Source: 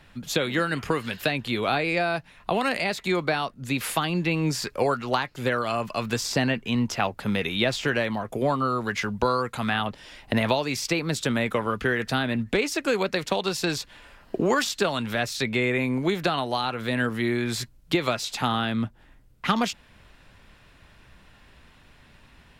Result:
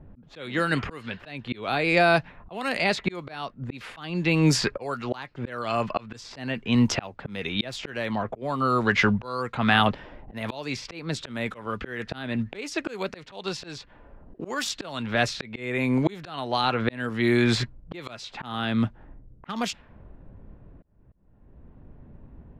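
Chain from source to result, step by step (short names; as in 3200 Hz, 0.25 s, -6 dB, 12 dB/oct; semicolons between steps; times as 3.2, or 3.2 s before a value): low-pass opened by the level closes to 400 Hz, open at -20 dBFS; auto swell 0.695 s; gain +8.5 dB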